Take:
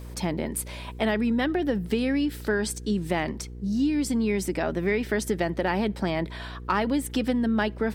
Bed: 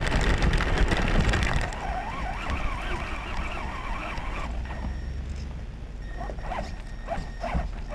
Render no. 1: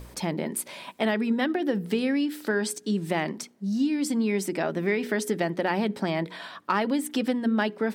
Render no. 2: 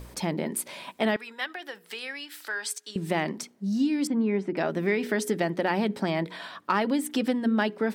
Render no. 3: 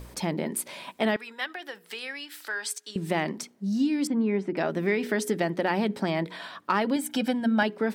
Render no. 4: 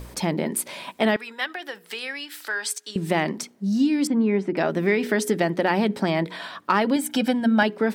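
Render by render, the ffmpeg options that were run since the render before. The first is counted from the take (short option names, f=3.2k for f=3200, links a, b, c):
-af "bandreject=f=60:t=h:w=4,bandreject=f=120:t=h:w=4,bandreject=f=180:t=h:w=4,bandreject=f=240:t=h:w=4,bandreject=f=300:t=h:w=4,bandreject=f=360:t=h:w=4,bandreject=f=420:t=h:w=4,bandreject=f=480:t=h:w=4"
-filter_complex "[0:a]asettb=1/sr,asplit=3[a][b][c];[a]atrim=end=1.164[d];[b]atrim=start=1.16:end=2.96,asetpts=PTS-STARTPTS,afade=t=in:d=0.004:c=qsin,afade=t=out:st=1.796:d=0.004:c=qsin,highpass=1.1k[e];[c]atrim=start=2.956[f];[d][e]acrossfade=d=0.004:c1=hsin:c2=qsin[g];[g][f]acrossfade=d=0.004:c1=qsin:c2=hsin,asettb=1/sr,asplit=3[h][i][j];[h]atrim=end=4.074[k];[i]atrim=start=4.07:end=4.57,asetpts=PTS-STARTPTS,afade=t=in:d=0.004:c=qsin,afade=t=out:st=0.496:d=0.004:c=qsin,lowpass=1.8k[l];[j]atrim=start=4.566[m];[k][l]acrossfade=d=0.004:c1=hsin:c2=qsin[n];[n][m]acrossfade=d=0.004:c1=qsin:c2=hsin"
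-filter_complex "[0:a]asettb=1/sr,asplit=3[a][b][c];[a]atrim=end=6.964[d];[b]atrim=start=6.96:end=7.63,asetpts=PTS-STARTPTS,afade=t=in:d=0.004:c=qsin,afade=t=out:st=0.666:d=0.004:c=qsin,aecho=1:1:1.3:0.65,atrim=end_sample=29547[e];[c]atrim=start=7.626[f];[d][e]acrossfade=d=0.004:c1=hsin:c2=qsin[g];[g][f]acrossfade=d=0.004:c1=qsin:c2=hsin"
-af "volume=4.5dB"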